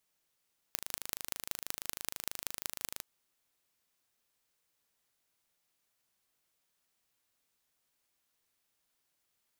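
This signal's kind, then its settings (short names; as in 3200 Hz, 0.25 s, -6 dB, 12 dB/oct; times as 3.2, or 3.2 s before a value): pulse train 26.2/s, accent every 5, -6 dBFS 2.26 s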